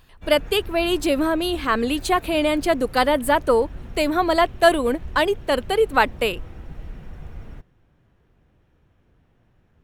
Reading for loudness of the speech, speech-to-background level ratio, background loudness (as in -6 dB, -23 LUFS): -20.5 LUFS, 19.5 dB, -40.0 LUFS